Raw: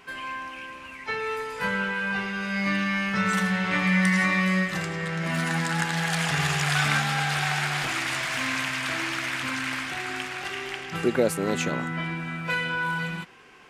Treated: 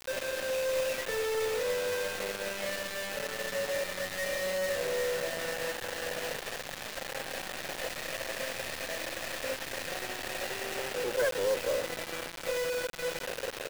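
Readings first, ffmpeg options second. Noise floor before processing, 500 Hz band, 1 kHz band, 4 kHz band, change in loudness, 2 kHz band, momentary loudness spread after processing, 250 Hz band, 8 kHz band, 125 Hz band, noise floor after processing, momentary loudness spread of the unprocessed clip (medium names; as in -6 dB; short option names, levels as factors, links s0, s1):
-42 dBFS, +1.5 dB, -11.0 dB, -6.0 dB, -7.5 dB, -10.5 dB, 6 LU, -19.0 dB, -3.0 dB, -21.5 dB, -42 dBFS, 10 LU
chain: -filter_complex "[0:a]areverse,acompressor=threshold=0.0178:ratio=16,areverse,acrusher=bits=4:mode=log:mix=0:aa=0.000001,alimiter=level_in=5.62:limit=0.0631:level=0:latency=1:release=11,volume=0.178,asplit=3[s0][s1][s2];[s0]bandpass=f=530:t=q:w=8,volume=1[s3];[s1]bandpass=f=1840:t=q:w=8,volume=0.501[s4];[s2]bandpass=f=2480:t=q:w=8,volume=0.355[s5];[s3][s4][s5]amix=inputs=3:normalize=0,aecho=1:1:382|764|1146:0.0708|0.0368|0.0191,aeval=exprs='0.00668*(cos(1*acos(clip(val(0)/0.00668,-1,1)))-cos(1*PI/2))+0.00106*(cos(4*acos(clip(val(0)/0.00668,-1,1)))-cos(4*PI/2))+0.000133*(cos(8*acos(clip(val(0)/0.00668,-1,1)))-cos(8*PI/2))':c=same,equalizer=f=580:t=o:w=1.5:g=14,aeval=exprs='0.0266*sin(PI/2*2*val(0)/0.0266)':c=same,acrusher=bits=6:mix=0:aa=0.000001,volume=2.24"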